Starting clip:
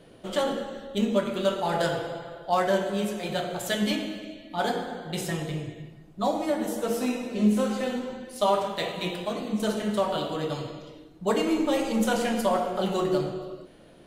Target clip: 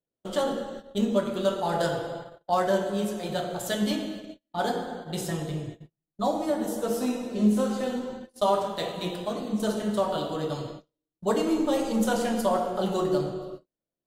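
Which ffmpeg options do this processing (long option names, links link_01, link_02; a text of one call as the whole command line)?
ffmpeg -i in.wav -af "agate=range=-40dB:threshold=-38dB:ratio=16:detection=peak,equalizer=frequency=2300:width=1.9:gain=-8" out.wav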